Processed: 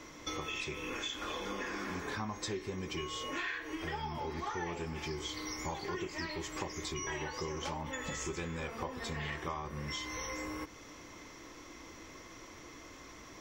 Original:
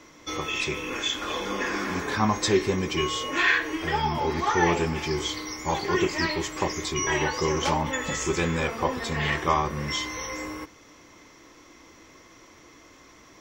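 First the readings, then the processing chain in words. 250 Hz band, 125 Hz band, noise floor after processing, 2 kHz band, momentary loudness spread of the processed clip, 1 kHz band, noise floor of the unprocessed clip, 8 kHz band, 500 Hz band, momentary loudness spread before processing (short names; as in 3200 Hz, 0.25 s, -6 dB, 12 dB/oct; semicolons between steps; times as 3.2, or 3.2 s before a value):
-12.5 dB, -12.0 dB, -52 dBFS, -13.0 dB, 13 LU, -13.5 dB, -52 dBFS, -10.5 dB, -13.5 dB, 7 LU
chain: low shelf 64 Hz +6 dB; compressor 6:1, threshold -37 dBFS, peak gain reduction 19 dB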